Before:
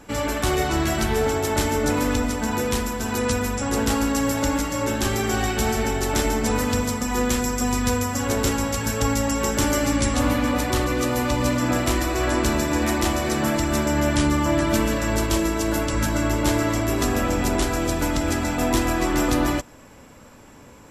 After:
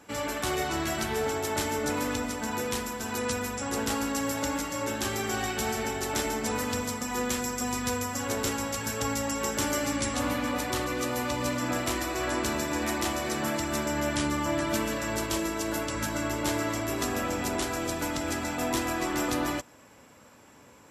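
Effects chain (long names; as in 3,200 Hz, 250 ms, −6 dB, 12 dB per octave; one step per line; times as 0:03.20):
high-pass filter 73 Hz
low-shelf EQ 390 Hz −5.5 dB
level −5 dB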